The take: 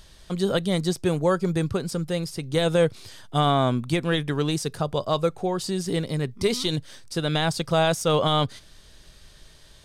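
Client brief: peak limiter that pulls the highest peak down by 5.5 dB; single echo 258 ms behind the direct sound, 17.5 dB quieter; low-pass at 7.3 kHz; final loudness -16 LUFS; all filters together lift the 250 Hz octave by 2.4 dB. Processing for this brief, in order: low-pass 7.3 kHz; peaking EQ 250 Hz +4 dB; peak limiter -14 dBFS; delay 258 ms -17.5 dB; trim +9.5 dB

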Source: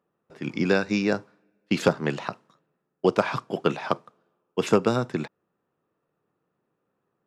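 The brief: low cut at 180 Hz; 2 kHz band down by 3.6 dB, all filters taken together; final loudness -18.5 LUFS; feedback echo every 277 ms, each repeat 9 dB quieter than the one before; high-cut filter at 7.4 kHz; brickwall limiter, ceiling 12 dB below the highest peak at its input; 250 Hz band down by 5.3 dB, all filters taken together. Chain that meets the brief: high-pass 180 Hz; low-pass 7.4 kHz; peaking EQ 250 Hz -5.5 dB; peaking EQ 2 kHz -5 dB; peak limiter -19 dBFS; feedback delay 277 ms, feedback 35%, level -9 dB; trim +15 dB

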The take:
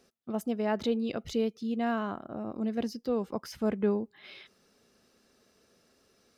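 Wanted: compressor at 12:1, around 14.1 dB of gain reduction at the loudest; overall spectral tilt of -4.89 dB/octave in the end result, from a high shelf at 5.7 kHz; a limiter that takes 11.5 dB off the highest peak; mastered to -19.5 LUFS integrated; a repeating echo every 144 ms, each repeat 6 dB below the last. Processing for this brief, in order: treble shelf 5.7 kHz -5.5 dB; compression 12:1, threshold -37 dBFS; peak limiter -39.5 dBFS; feedback delay 144 ms, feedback 50%, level -6 dB; trim +28 dB

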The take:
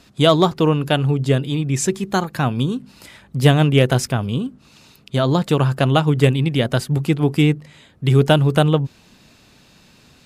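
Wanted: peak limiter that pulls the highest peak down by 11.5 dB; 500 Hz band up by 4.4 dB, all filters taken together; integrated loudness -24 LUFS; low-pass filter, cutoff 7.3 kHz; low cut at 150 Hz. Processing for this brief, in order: high-pass 150 Hz; low-pass 7.3 kHz; peaking EQ 500 Hz +5.5 dB; trim -2.5 dB; peak limiter -11.5 dBFS

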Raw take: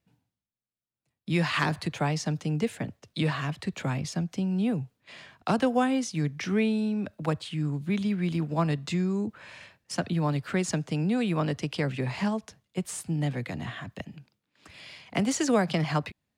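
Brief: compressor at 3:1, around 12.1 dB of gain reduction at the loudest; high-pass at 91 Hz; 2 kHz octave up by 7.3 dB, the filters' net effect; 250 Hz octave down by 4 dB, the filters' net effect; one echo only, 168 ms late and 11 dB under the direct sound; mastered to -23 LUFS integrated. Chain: high-pass 91 Hz; peaking EQ 250 Hz -5.5 dB; peaking EQ 2 kHz +9 dB; compression 3:1, threshold -34 dBFS; delay 168 ms -11 dB; trim +13 dB

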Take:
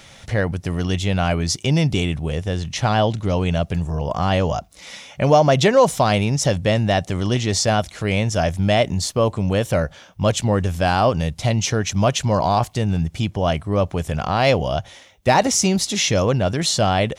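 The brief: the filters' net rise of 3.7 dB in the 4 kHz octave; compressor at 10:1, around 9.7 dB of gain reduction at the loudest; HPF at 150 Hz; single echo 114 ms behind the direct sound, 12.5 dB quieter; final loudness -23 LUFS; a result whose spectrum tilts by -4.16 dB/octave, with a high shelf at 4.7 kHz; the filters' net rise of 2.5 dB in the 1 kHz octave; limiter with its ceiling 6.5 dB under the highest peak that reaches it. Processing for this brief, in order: high-pass 150 Hz; peaking EQ 1 kHz +3.5 dB; peaking EQ 4 kHz +8 dB; treble shelf 4.7 kHz -6.5 dB; compression 10:1, threshold -17 dBFS; peak limiter -12 dBFS; delay 114 ms -12.5 dB; trim +1.5 dB

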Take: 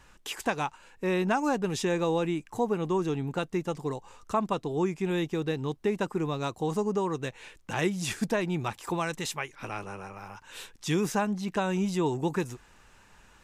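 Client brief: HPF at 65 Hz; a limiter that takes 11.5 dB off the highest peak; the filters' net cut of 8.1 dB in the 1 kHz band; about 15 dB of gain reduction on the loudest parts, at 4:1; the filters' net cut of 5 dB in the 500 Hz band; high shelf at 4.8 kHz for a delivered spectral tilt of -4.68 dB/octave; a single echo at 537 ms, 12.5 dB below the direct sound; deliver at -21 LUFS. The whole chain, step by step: high-pass 65 Hz; peaking EQ 500 Hz -5 dB; peaking EQ 1 kHz -9 dB; treble shelf 4.8 kHz +6.5 dB; compression 4:1, threshold -44 dBFS; peak limiter -38 dBFS; delay 537 ms -12.5 dB; trim +26.5 dB

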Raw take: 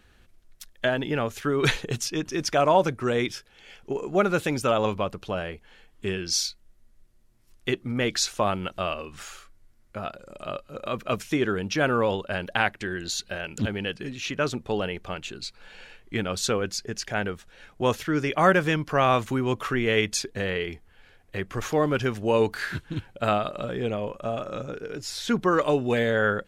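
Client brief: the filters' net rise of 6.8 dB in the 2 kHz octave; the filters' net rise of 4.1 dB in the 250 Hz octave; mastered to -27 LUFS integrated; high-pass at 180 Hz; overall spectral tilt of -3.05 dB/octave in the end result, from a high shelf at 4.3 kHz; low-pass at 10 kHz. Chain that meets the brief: high-pass 180 Hz; low-pass 10 kHz; peaking EQ 250 Hz +6.5 dB; peaking EQ 2 kHz +7 dB; treble shelf 4.3 kHz +9 dB; trim -4.5 dB

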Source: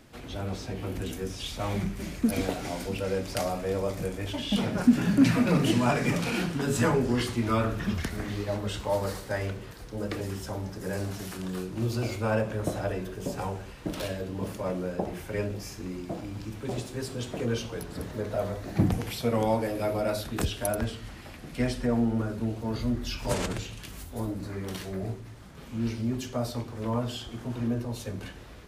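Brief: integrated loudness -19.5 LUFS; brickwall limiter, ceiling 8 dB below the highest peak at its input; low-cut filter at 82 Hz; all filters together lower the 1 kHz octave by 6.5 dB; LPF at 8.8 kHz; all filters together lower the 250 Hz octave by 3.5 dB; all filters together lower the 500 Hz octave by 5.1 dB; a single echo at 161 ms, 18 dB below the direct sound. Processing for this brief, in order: high-pass 82 Hz; low-pass 8.8 kHz; peaking EQ 250 Hz -3 dB; peaking EQ 500 Hz -3.5 dB; peaking EQ 1 kHz -7.5 dB; peak limiter -21 dBFS; delay 161 ms -18 dB; trim +15 dB

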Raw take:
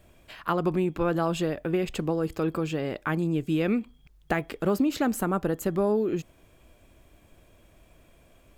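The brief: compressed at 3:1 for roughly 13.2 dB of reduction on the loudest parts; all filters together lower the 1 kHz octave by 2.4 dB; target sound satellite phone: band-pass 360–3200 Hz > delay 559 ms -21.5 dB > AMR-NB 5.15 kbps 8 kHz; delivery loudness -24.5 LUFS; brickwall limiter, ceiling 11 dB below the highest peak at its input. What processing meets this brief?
peaking EQ 1 kHz -3 dB; compression 3:1, threshold -39 dBFS; peak limiter -32.5 dBFS; band-pass 360–3200 Hz; delay 559 ms -21.5 dB; trim +23 dB; AMR-NB 5.15 kbps 8 kHz

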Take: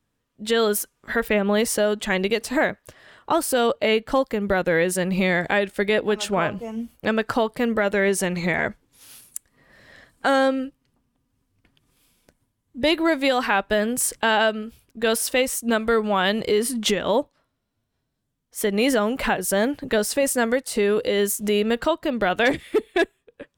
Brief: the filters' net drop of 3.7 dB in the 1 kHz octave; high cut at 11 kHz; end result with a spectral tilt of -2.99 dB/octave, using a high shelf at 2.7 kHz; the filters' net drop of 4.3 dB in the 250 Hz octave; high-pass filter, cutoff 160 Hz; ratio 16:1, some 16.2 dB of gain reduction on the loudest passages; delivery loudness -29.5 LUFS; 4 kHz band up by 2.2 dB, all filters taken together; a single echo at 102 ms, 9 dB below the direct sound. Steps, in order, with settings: high-pass 160 Hz; low-pass 11 kHz; peaking EQ 250 Hz -4 dB; peaking EQ 1 kHz -4.5 dB; treble shelf 2.7 kHz -5 dB; peaking EQ 4 kHz +7.5 dB; compression 16:1, threshold -33 dBFS; delay 102 ms -9 dB; trim +7.5 dB

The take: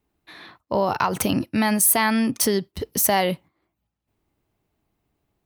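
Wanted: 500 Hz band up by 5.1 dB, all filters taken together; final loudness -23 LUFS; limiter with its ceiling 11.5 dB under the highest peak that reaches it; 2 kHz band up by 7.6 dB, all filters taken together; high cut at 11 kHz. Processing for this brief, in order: low-pass 11 kHz; peaking EQ 500 Hz +6 dB; peaking EQ 2 kHz +8.5 dB; trim -0.5 dB; peak limiter -12.5 dBFS

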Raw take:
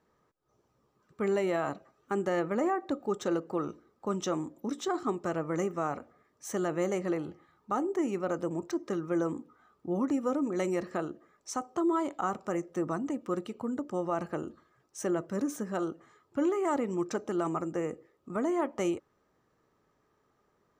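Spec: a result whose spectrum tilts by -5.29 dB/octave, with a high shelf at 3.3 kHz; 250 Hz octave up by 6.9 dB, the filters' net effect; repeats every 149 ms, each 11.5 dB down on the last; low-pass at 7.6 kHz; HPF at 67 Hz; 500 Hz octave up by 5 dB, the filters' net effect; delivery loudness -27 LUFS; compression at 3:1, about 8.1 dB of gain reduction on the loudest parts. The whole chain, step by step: high-pass 67 Hz; low-pass 7.6 kHz; peaking EQ 250 Hz +8.5 dB; peaking EQ 500 Hz +3 dB; treble shelf 3.3 kHz +3.5 dB; compression 3:1, threshold -29 dBFS; feedback delay 149 ms, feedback 27%, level -11.5 dB; trim +5.5 dB

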